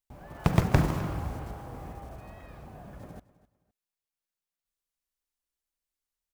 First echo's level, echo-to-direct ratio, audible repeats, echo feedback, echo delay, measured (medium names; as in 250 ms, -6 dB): -18.5 dB, -18.0 dB, 2, 26%, 257 ms